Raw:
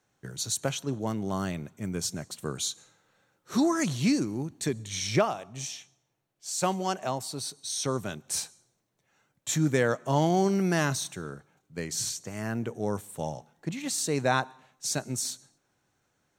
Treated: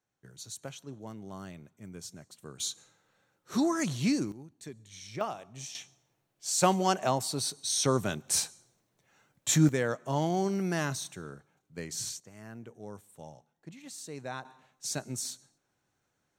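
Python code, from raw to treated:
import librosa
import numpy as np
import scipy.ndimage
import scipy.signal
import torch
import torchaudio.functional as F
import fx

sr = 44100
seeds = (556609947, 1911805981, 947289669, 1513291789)

y = fx.gain(x, sr, db=fx.steps((0.0, -12.5), (2.6, -3.0), (4.32, -15.0), (5.21, -6.0), (5.75, 3.0), (9.69, -5.0), (12.2, -14.0), (14.45, -4.5)))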